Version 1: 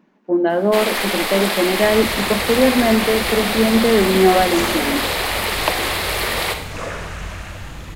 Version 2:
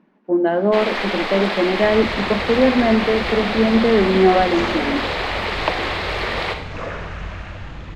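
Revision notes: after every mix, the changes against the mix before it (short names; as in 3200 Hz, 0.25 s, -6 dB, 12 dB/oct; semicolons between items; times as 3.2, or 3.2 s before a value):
master: add air absorption 180 m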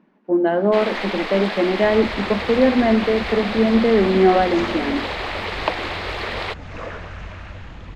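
reverb: off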